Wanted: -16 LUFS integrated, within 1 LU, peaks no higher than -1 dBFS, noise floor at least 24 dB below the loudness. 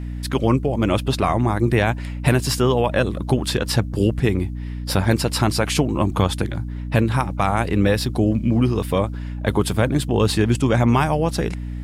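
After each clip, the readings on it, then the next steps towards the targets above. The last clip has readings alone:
hum 60 Hz; harmonics up to 300 Hz; hum level -26 dBFS; loudness -20.5 LUFS; peak -4.0 dBFS; loudness target -16.0 LUFS
-> de-hum 60 Hz, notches 5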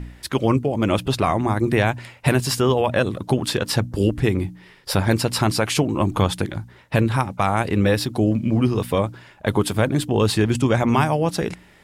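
hum none; loudness -21.0 LUFS; peak -4.5 dBFS; loudness target -16.0 LUFS
-> gain +5 dB; limiter -1 dBFS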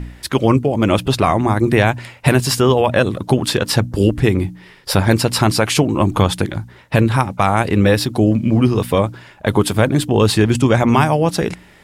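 loudness -16.0 LUFS; peak -1.0 dBFS; noise floor -45 dBFS

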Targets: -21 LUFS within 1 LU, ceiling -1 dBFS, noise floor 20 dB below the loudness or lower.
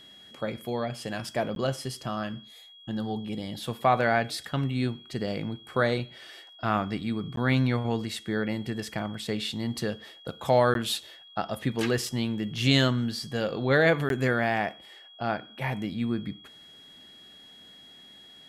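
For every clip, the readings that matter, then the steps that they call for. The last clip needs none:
dropouts 4; longest dropout 12 ms; steady tone 3300 Hz; tone level -49 dBFS; loudness -28.5 LUFS; peak -9.5 dBFS; loudness target -21.0 LUFS
-> interpolate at 1.55/7.36/10.74/14.09, 12 ms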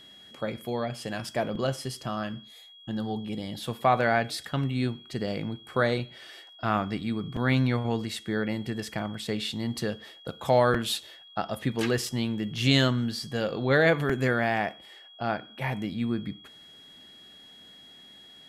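dropouts 0; steady tone 3300 Hz; tone level -49 dBFS
-> notch 3300 Hz, Q 30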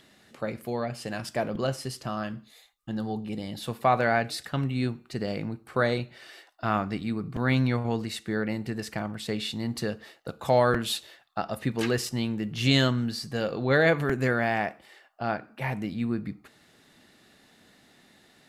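steady tone none; loudness -28.5 LUFS; peak -10.0 dBFS; loudness target -21.0 LUFS
-> gain +7.5 dB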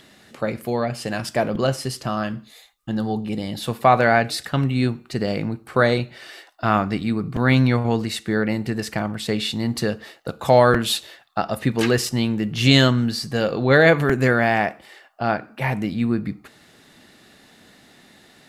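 loudness -21.0 LUFS; peak -2.5 dBFS; noise floor -52 dBFS

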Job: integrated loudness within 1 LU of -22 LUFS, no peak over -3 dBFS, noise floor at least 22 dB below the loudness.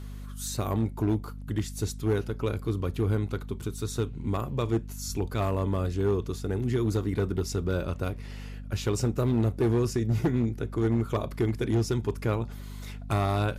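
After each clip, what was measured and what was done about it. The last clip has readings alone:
clipped 1.1%; flat tops at -19.0 dBFS; hum 50 Hz; harmonics up to 250 Hz; hum level -37 dBFS; loudness -29.0 LUFS; peak -19.0 dBFS; loudness target -22.0 LUFS
-> clip repair -19 dBFS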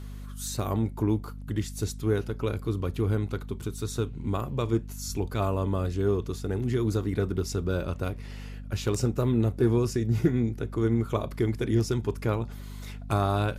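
clipped 0.0%; hum 50 Hz; harmonics up to 250 Hz; hum level -37 dBFS
-> notches 50/100/150/200/250 Hz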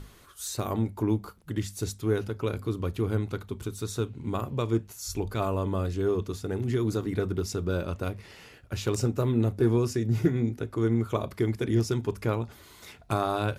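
hum none; loudness -29.5 LUFS; peak -11.5 dBFS; loudness target -22.0 LUFS
-> gain +7.5 dB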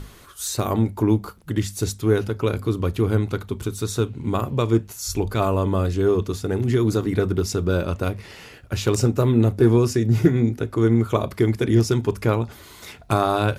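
loudness -22.0 LUFS; peak -4.0 dBFS; noise floor -45 dBFS

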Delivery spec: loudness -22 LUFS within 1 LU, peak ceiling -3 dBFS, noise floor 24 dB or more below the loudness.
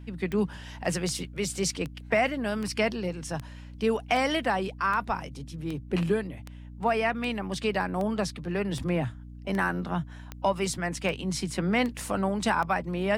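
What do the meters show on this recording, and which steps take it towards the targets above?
clicks 17; hum 60 Hz; harmonics up to 300 Hz; hum level -40 dBFS; loudness -29.0 LUFS; peak -11.0 dBFS; loudness target -22.0 LUFS
-> de-click; de-hum 60 Hz, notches 5; gain +7 dB

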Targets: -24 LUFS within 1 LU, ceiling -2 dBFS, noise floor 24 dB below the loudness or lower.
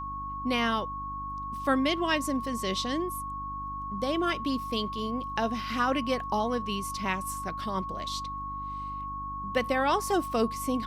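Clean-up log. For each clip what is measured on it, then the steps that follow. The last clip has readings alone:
hum 50 Hz; harmonics up to 300 Hz; hum level -40 dBFS; steady tone 1100 Hz; tone level -34 dBFS; loudness -30.5 LUFS; peak -13.5 dBFS; loudness target -24.0 LUFS
-> de-hum 50 Hz, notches 6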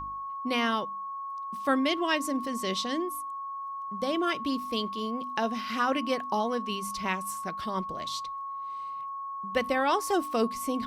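hum none; steady tone 1100 Hz; tone level -34 dBFS
-> notch 1100 Hz, Q 30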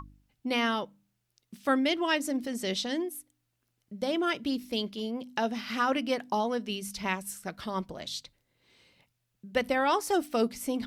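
steady tone none; loudness -30.5 LUFS; peak -14.0 dBFS; loudness target -24.0 LUFS
-> gain +6.5 dB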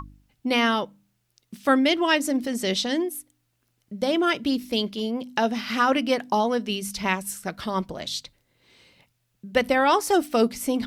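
loudness -24.0 LUFS; peak -7.5 dBFS; noise floor -73 dBFS

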